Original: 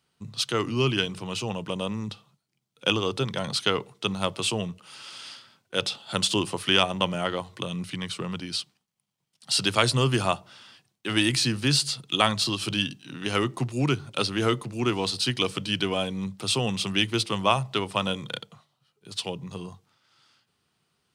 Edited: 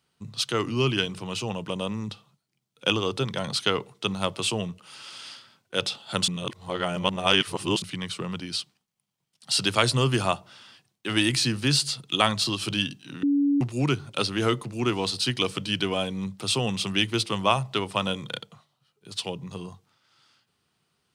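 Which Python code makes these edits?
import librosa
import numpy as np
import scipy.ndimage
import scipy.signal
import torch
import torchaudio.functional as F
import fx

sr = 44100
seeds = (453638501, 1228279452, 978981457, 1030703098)

y = fx.edit(x, sr, fx.reverse_span(start_s=6.28, length_s=1.54),
    fx.bleep(start_s=13.23, length_s=0.38, hz=284.0, db=-18.5), tone=tone)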